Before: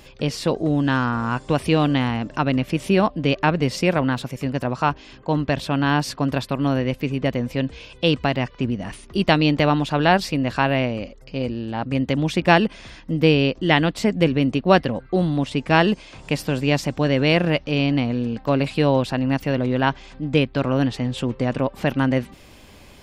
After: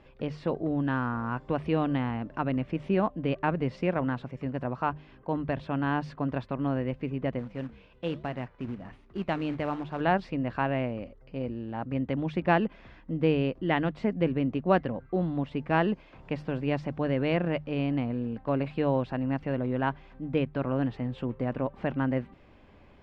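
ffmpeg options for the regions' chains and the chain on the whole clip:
-filter_complex "[0:a]asettb=1/sr,asplit=3[a][b][c];[a]atrim=end=7.394[d];[b]atrim=start=7.39:end=10.01,asetpts=PTS-STARTPTS,afade=t=in:d=0.004:c=qsin,afade=t=out:st=2.616:d=0.004:c=qsin,flanger=delay=5.3:depth=8.1:regen=-87:speed=1.1:shape=triangular,acrusher=bits=3:mode=log:mix=0:aa=0.000001[e];[c]atrim=start=10.006[f];[d][e]acrossfade=d=0.004:c1=hsin:c2=qsin[g];[g][f]acrossfade=d=0.004:c1=qsin:c2=hsin,lowpass=1.9k,bandreject=f=50:t=h:w=6,bandreject=f=100:t=h:w=6,bandreject=f=150:t=h:w=6,volume=-8dB"

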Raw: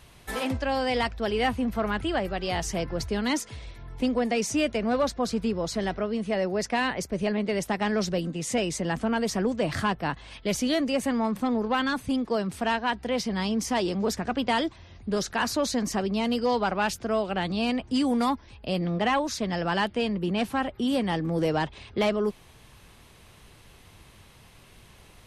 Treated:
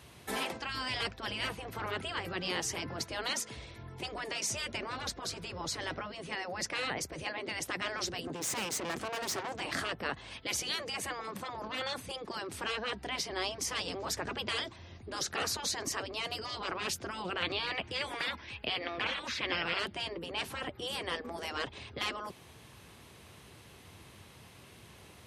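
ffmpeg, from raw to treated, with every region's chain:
-filter_complex "[0:a]asettb=1/sr,asplit=3[a][b][c];[a]atrim=end=8.274[d];[b]atrim=start=8.27:end=9.6,asetpts=PTS-STARTPTS,afade=t=in:d=0.004:c=qsin,afade=t=out:st=1.326:d=0.004:c=qsin,highpass=83,acontrast=50,aeval=exprs='(tanh(28.2*val(0)+0.7)-tanh(0.7))/28.2':c=same[e];[c]atrim=start=9.596[f];[d][e]acrossfade=d=0.004:c1=hsin:c2=qsin[g];[g][f]acrossfade=d=0.004:c1=qsin:c2=hsin,asettb=1/sr,asplit=3[h][i][j];[h]atrim=end=17.424[k];[i]atrim=start=17.42:end=19.79,asetpts=PTS-STARTPTS,afade=t=in:d=0.004:c=qsin,afade=t=out:st=2.366:d=0.004:c=qsin,acrossover=split=3500[l][m];[m]acompressor=threshold=-51dB:ratio=4:attack=1:release=60[n];[l][n]amix=inputs=2:normalize=0,equalizer=f=2.4k:t=o:w=1.7:g=13[o];[j]atrim=start=19.786[p];[k][o]acrossfade=d=0.004:c1=hsin:c2=qsin[q];[q][p]acrossfade=d=0.004:c1=qsin:c2=hsin,afftfilt=real='re*lt(hypot(re,im),0.141)':imag='im*lt(hypot(re,im),0.141)':win_size=1024:overlap=0.75,highpass=f=69:w=0.5412,highpass=f=69:w=1.3066,equalizer=f=350:w=1.5:g=2.5,volume=-1dB"

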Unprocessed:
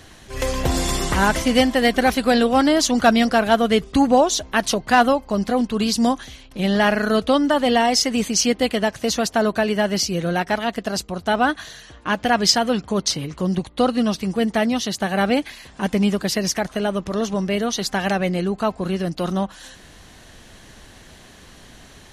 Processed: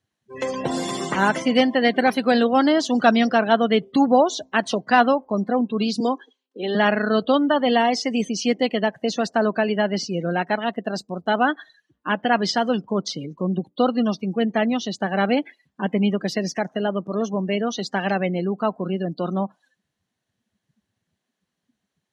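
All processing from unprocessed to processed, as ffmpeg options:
-filter_complex "[0:a]asettb=1/sr,asplit=3[a][b][c];[a]atrim=end=6.004[d];[b]atrim=start=6:end=6.75,asetpts=PTS-STARTPTS,afade=t=in:d=0.004:c=qsin,afade=t=out:st=0.746:d=0.004:c=qsin,highpass=f=270:w=0.5412,highpass=f=270:w=1.3066,equalizer=f=440:t=q:w=4:g=9,equalizer=f=620:t=q:w=4:g=-8,equalizer=f=2.2k:t=q:w=4:g=-6,lowpass=f=8.3k:w=0.5412,lowpass=f=8.3k:w=1.3066,bandreject=f=5.6k:w=22[e];[c]atrim=start=6.746[f];[d][e]acrossfade=d=0.004:c1=hsin:c2=qsin[g];[g][f]acrossfade=d=0.004:c1=qsin:c2=hsin,afftdn=nr=34:nf=-30,highpass=f=160:w=0.5412,highpass=f=160:w=1.3066,acrossover=split=4000[h][i];[i]acompressor=threshold=-34dB:ratio=4:attack=1:release=60[j];[h][j]amix=inputs=2:normalize=0,volume=-1dB"

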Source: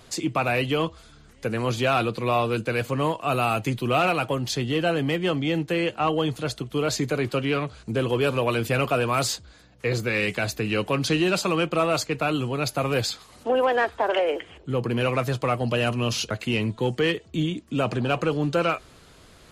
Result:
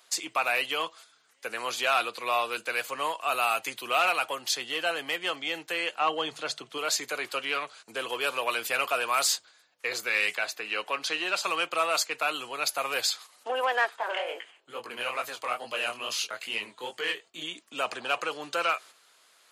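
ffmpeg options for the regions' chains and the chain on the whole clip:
-filter_complex "[0:a]asettb=1/sr,asplit=3[a][b][c];[a]atrim=end=6.014[d];[b]atrim=start=6.01:end=6.78,asetpts=PTS-STARTPTS,afade=t=in:d=0.004:c=qsin,afade=t=out:st=0.766:d=0.004:c=qsin,lowpass=7.3k,lowshelf=f=310:g=8.5,bandreject=f=50:t=h:w=6,bandreject=f=100:t=h:w=6,bandreject=f=150:t=h:w=6[e];[c]atrim=start=6.776[f];[d][e]acrossfade=d=0.004:c1=hsin:c2=qsin[g];[g][f]acrossfade=d=0.004:c1=qsin:c2=hsin,asettb=1/sr,asplit=3[h][i][j];[h]atrim=end=10.354[k];[i]atrim=start=10.35:end=11.44,asetpts=PTS-STARTPTS,afade=t=in:d=0.004:c=qsin,afade=t=out:st=1.086:d=0.004:c=qsin,lowpass=f=3.4k:p=1,lowshelf=f=130:g=-11.5[l];[j]atrim=start=11.436[m];[k][l]acrossfade=d=0.004:c1=hsin:c2=qsin[n];[n][m]acrossfade=d=0.004:c1=qsin:c2=hsin,asettb=1/sr,asplit=3[o][p][q];[o]atrim=end=13.964[r];[p]atrim=start=13.96:end=17.42,asetpts=PTS-STARTPTS,afade=t=in:d=0.004:c=qsin,afade=t=out:st=3.456:d=0.004:c=qsin,bandreject=f=5.6k:w=11,flanger=delay=17.5:depth=7.5:speed=2.3[s];[q]atrim=start=17.416[t];[r][s]acrossfade=d=0.004:c1=hsin:c2=qsin[u];[u][t]acrossfade=d=0.004:c1=qsin:c2=hsin,highshelf=f=7.5k:g=5.5,agate=range=-7dB:threshold=-43dB:ratio=16:detection=peak,highpass=860"

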